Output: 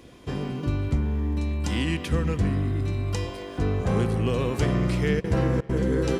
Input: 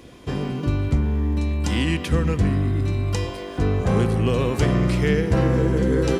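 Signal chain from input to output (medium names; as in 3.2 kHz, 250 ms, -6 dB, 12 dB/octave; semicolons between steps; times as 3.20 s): 5.19–5.88 s: trance gate "xxx.xxxx." 166 bpm -60 dB; tape echo 271 ms, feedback 73%, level -22 dB, low-pass 4.7 kHz; trim -4 dB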